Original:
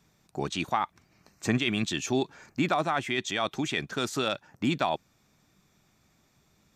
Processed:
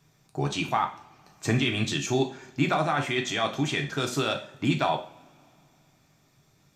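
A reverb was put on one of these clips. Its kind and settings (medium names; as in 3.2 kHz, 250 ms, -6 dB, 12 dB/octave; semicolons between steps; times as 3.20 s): two-slope reverb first 0.4 s, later 2.9 s, from -28 dB, DRR 2.5 dB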